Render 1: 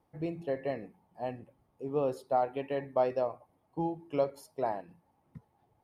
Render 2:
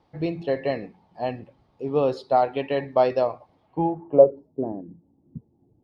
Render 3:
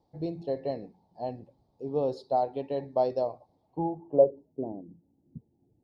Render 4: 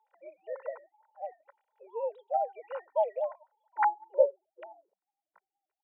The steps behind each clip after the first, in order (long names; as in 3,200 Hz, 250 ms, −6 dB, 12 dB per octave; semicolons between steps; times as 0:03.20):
low-pass filter sweep 4,300 Hz → 300 Hz, 0:03.61–0:04.41; level +8.5 dB
flat-topped bell 1,900 Hz −14 dB; level −6.5 dB
three sine waves on the formant tracks; inverse Chebyshev high-pass filter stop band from 280 Hz, stop band 50 dB; comb filter 2.1 ms, depth 61%; level +4.5 dB